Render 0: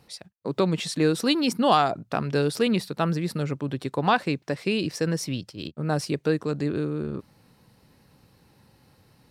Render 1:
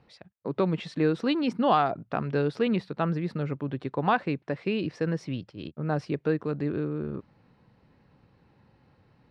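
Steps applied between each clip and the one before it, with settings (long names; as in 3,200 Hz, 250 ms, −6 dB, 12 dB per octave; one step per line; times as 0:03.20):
low-pass filter 2,500 Hz 12 dB per octave
level −2.5 dB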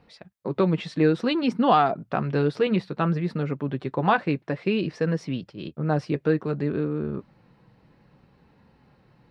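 flanger 0.58 Hz, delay 4.1 ms, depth 2.5 ms, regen −53%
level +7.5 dB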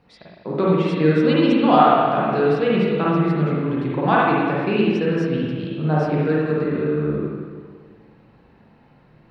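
spring reverb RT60 1.7 s, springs 39/51/60 ms, chirp 45 ms, DRR −6 dB
level −1 dB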